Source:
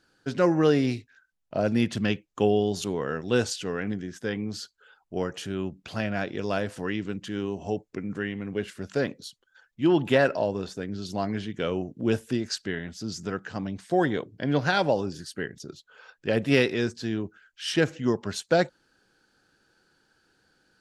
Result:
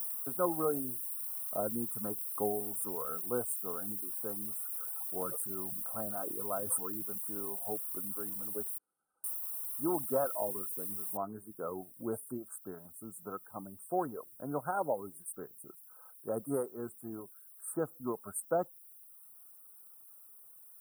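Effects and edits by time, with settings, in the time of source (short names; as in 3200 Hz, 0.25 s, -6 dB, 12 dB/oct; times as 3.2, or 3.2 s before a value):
4.61–7.03 sustainer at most 34 dB/s
8.78–9.24 room tone
11.17 noise floor step -46 dB -62 dB
whole clip: reverb removal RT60 0.82 s; Chebyshev band-stop 1300–8800 Hz, order 5; tilt +4 dB/oct; gain -4.5 dB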